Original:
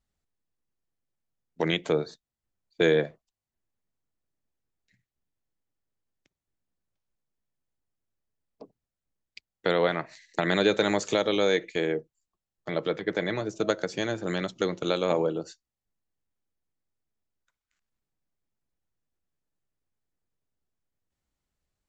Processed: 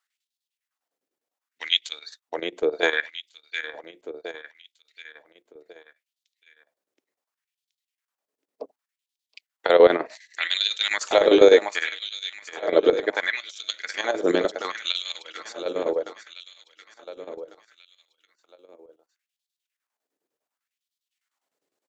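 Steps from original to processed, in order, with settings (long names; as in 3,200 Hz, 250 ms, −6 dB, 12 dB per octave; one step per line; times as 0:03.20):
parametric band 270 Hz +7.5 dB 0.52 octaves
repeating echo 724 ms, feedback 49%, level −10 dB
auto-filter high-pass sine 0.68 Hz 390–3,800 Hz
square-wave tremolo 9.9 Hz, depth 65%, duty 70%
level +5 dB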